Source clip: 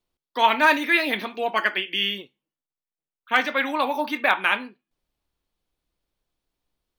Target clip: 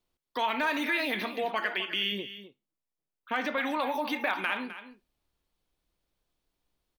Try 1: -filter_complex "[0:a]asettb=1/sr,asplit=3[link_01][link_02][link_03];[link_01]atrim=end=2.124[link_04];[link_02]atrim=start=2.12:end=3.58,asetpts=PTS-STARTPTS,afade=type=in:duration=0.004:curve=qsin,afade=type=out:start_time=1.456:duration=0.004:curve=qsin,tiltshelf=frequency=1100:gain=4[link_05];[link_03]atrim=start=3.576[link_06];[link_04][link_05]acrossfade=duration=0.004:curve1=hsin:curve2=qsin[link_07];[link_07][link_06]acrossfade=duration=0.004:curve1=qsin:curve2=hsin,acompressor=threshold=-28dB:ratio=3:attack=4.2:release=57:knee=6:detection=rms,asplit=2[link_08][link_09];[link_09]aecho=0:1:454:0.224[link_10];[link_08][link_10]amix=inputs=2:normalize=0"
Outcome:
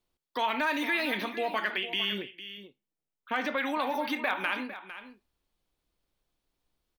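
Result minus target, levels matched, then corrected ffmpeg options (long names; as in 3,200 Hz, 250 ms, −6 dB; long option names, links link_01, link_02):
echo 196 ms late
-filter_complex "[0:a]asettb=1/sr,asplit=3[link_01][link_02][link_03];[link_01]atrim=end=2.124[link_04];[link_02]atrim=start=2.12:end=3.58,asetpts=PTS-STARTPTS,afade=type=in:duration=0.004:curve=qsin,afade=type=out:start_time=1.456:duration=0.004:curve=qsin,tiltshelf=frequency=1100:gain=4[link_05];[link_03]atrim=start=3.576[link_06];[link_04][link_05]acrossfade=duration=0.004:curve1=hsin:curve2=qsin[link_07];[link_07][link_06]acrossfade=duration=0.004:curve1=qsin:curve2=hsin,acompressor=threshold=-28dB:ratio=3:attack=4.2:release=57:knee=6:detection=rms,asplit=2[link_08][link_09];[link_09]aecho=0:1:258:0.224[link_10];[link_08][link_10]amix=inputs=2:normalize=0"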